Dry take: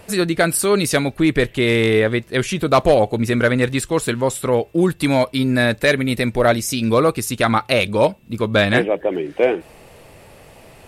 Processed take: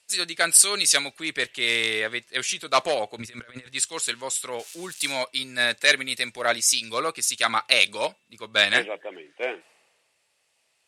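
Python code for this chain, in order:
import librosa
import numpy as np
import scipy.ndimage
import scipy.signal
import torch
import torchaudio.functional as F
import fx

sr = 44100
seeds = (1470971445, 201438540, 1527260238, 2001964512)

y = fx.crossing_spikes(x, sr, level_db=-22.5, at=(4.59, 5.12))
y = fx.weighting(y, sr, curve='ITU-R 468')
y = fx.over_compress(y, sr, threshold_db=-29.0, ratio=-1.0, at=(3.18, 3.66))
y = fx.band_widen(y, sr, depth_pct=70)
y = y * librosa.db_to_amplitude(-8.0)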